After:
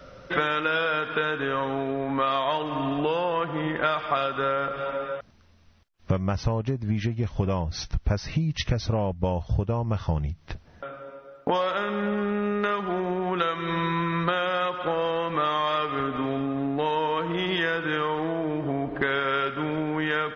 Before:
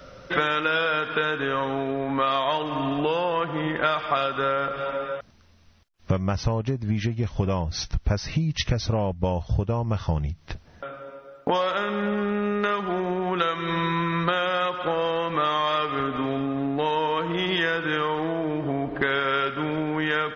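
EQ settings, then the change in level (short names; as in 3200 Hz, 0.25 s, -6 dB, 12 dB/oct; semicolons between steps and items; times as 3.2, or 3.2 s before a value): high shelf 4200 Hz -5 dB; -1.0 dB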